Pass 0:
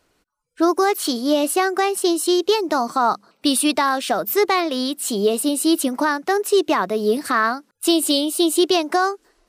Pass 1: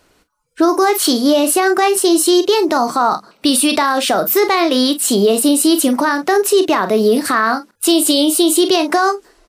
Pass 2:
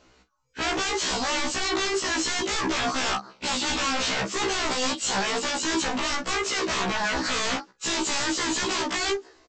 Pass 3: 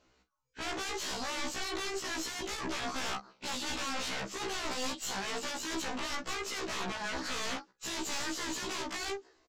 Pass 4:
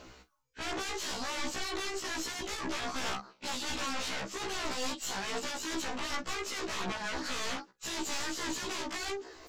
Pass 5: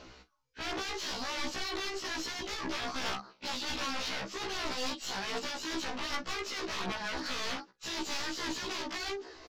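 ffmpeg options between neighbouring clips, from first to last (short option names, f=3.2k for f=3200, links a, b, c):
-af "aecho=1:1:32|45:0.224|0.188,alimiter=level_in=13dB:limit=-1dB:release=50:level=0:latency=1,volume=-4dB"
-af "aresample=16000,aeval=exprs='0.112*(abs(mod(val(0)/0.112+3,4)-2)-1)':c=same,aresample=44100,afftfilt=real='re*1.73*eq(mod(b,3),0)':imag='im*1.73*eq(mod(b,3),0)':win_size=2048:overlap=0.75"
-af "aeval=exprs='(tanh(12.6*val(0)+0.75)-tanh(0.75))/12.6':c=same,volume=-6.5dB"
-af "areverse,acompressor=mode=upward:threshold=-38dB:ratio=2.5,areverse,aphaser=in_gain=1:out_gain=1:delay=3.6:decay=0.22:speed=1.3:type=sinusoidal"
-af "aresample=32000,aresample=44100,highshelf=f=6.7k:t=q:w=1.5:g=-8,aeval=exprs='0.075*(cos(1*acos(clip(val(0)/0.075,-1,1)))-cos(1*PI/2))+0.00376*(cos(4*acos(clip(val(0)/0.075,-1,1)))-cos(4*PI/2))+0.00531*(cos(6*acos(clip(val(0)/0.075,-1,1)))-cos(6*PI/2))':c=same"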